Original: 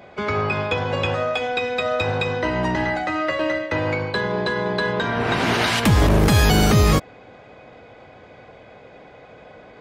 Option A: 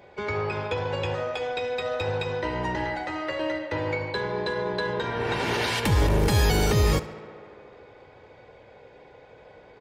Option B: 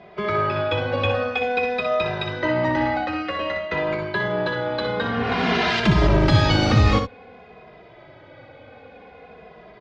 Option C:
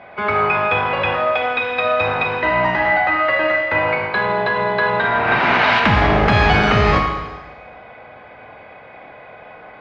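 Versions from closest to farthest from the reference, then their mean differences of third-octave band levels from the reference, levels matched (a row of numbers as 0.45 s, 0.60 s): A, B, C; 2.0 dB, 4.0 dB, 5.5 dB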